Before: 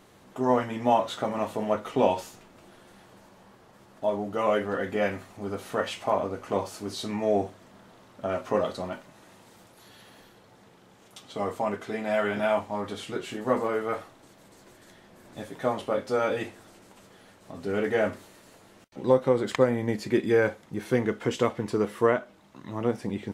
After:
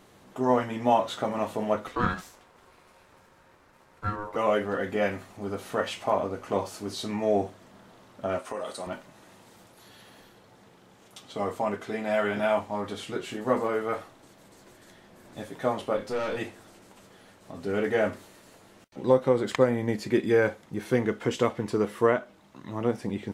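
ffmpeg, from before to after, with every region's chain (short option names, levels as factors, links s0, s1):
-filter_complex "[0:a]asettb=1/sr,asplit=3[s0][s1][s2];[s0]atrim=end=1.874[s3];[s1]atrim=start=1.87:end=4.36,asetpts=PTS-STARTPTS,afade=t=in:d=0.004:c=qsin,afade=t=out:st=2.486:d=0.004:c=qsin,aeval=exprs='if(lt(val(0),0),0.708*val(0),val(0))':c=same,aeval=exprs='val(0)*sin(2*PI*730*n/s)':c=same[s4];[s2]atrim=start=4.356[s5];[s3][s4]acrossfade=d=0.004:c1=hsin:c2=qsin[s6];[s6][s5]acrossfade=d=0.004:c1=qsin:c2=hsin,asettb=1/sr,asplit=3[s7][s8][s9];[s7]atrim=end=8.394[s10];[s8]atrim=start=8.39:end=8.87,asetpts=PTS-STARTPTS,afade=t=in:d=0.004:c=qsin,afade=t=out:st=0.476:d=0.004:c=qsin,highpass=f=520:p=1,equalizer=f=8900:t=o:w=0.36:g=14,acompressor=threshold=0.0355:ratio=6:attack=3.2:release=140:knee=1:detection=peak[s11];[s9]atrim=start=8.866[s12];[s10][s11]acrossfade=d=0.004:c1=hsin:c2=qsin[s13];[s13][s12]acrossfade=d=0.004:c1=qsin:c2=hsin,asettb=1/sr,asplit=3[s14][s15][s16];[s14]atrim=end=15.974[s17];[s15]atrim=start=15.97:end=16.38,asetpts=PTS-STARTPTS,afade=t=in:d=0.004:c=qsin,afade=t=out:st=0.406:d=0.004:c=qsin,aeval=exprs='(tanh(22.4*val(0)+0.25)-tanh(0.25))/22.4':c=same,asplit=2[s18][s19];[s19]adelay=29,volume=0.376[s20];[s18][s20]amix=inputs=2:normalize=0,atrim=end_sample=18081[s21];[s16]atrim=start=16.376[s22];[s17][s21]acrossfade=d=0.004:c1=hsin:c2=qsin[s23];[s23][s22]acrossfade=d=0.004:c1=qsin:c2=hsin"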